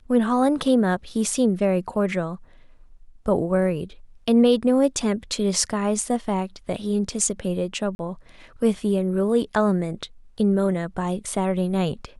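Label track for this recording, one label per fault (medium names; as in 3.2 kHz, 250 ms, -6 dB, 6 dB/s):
7.950000	7.990000	dropout 41 ms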